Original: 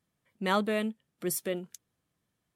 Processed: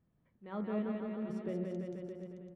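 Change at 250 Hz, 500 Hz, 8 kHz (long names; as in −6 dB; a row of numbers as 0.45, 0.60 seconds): −2.5 dB, −6.5 dB, below −30 dB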